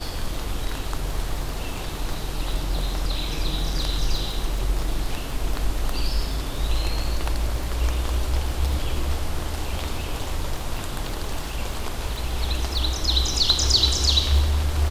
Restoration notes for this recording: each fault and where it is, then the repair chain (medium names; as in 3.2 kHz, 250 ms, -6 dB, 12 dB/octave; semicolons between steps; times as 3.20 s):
crackle 35 per s -29 dBFS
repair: de-click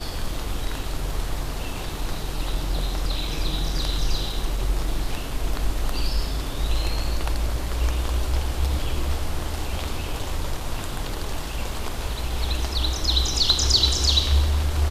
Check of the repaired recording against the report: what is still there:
nothing left